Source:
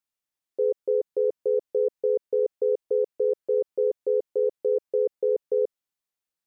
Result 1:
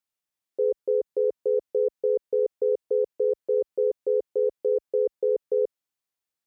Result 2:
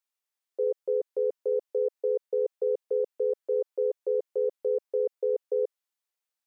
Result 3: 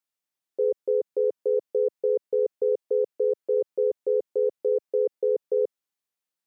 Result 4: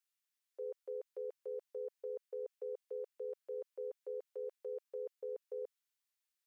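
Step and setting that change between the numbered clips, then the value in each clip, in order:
high-pass filter, corner frequency: 44, 480, 120, 1,400 Hertz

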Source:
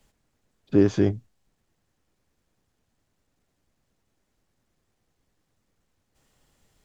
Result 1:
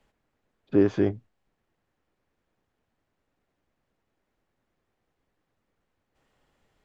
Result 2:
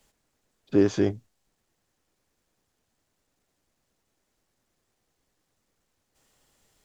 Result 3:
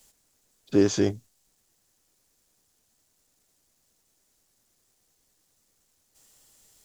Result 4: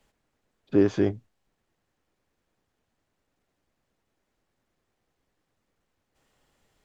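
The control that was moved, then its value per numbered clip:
bass and treble, treble: −14, +3, +15, −6 decibels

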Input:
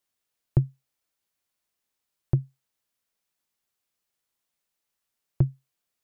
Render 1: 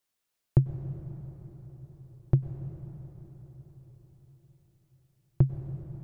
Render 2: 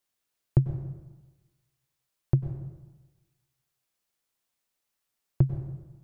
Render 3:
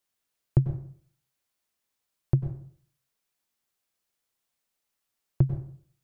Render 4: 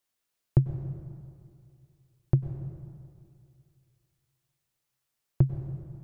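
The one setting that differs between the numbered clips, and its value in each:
dense smooth reverb, RT60: 5.2, 1.2, 0.54, 2.4 seconds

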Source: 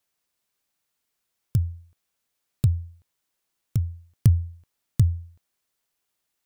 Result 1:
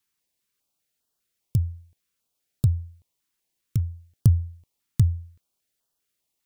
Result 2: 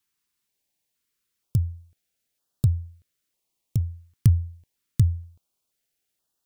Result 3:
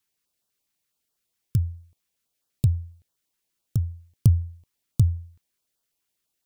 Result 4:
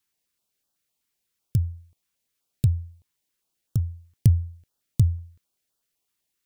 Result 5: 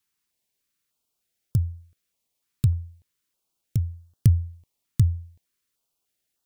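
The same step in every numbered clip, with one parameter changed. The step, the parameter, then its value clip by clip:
notch on a step sequencer, speed: 5, 2.1, 12, 7.9, 3.3 Hertz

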